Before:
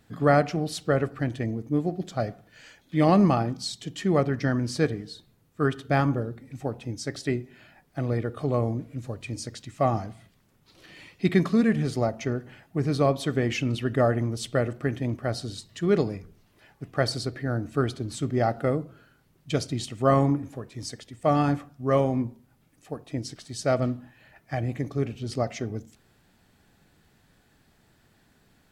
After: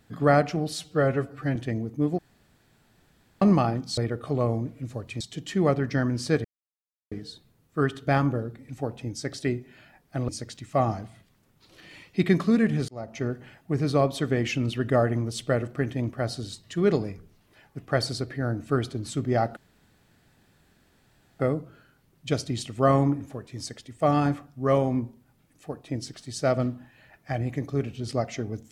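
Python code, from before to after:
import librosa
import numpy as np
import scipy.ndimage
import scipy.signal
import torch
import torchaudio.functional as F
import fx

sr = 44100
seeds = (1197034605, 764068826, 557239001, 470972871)

y = fx.edit(x, sr, fx.stretch_span(start_s=0.73, length_s=0.55, factor=1.5),
    fx.room_tone_fill(start_s=1.91, length_s=1.23),
    fx.insert_silence(at_s=4.94, length_s=0.67),
    fx.move(start_s=8.11, length_s=1.23, to_s=3.7),
    fx.fade_in_span(start_s=11.94, length_s=0.4),
    fx.insert_room_tone(at_s=18.62, length_s=1.83), tone=tone)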